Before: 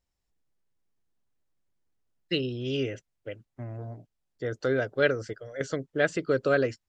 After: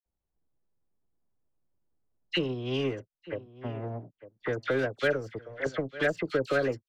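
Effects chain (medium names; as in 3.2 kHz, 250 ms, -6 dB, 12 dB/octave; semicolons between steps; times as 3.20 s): power-law waveshaper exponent 1.4; in parallel at -5 dB: overload inside the chain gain 23.5 dB; on the sum: phase dispersion lows, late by 56 ms, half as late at 1.7 kHz; on a send: delay 900 ms -23 dB; on the sum: level-controlled noise filter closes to 990 Hz, open at -26.5 dBFS; three bands compressed up and down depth 70%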